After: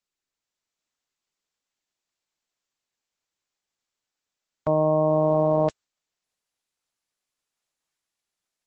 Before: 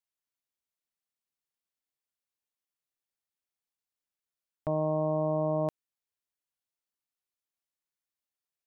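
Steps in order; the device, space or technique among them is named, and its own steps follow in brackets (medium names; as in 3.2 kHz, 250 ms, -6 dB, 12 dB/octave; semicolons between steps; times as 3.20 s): video call (high-pass 140 Hz 6 dB/octave; level rider gain up to 8 dB; trim +1 dB; Opus 12 kbps 48 kHz)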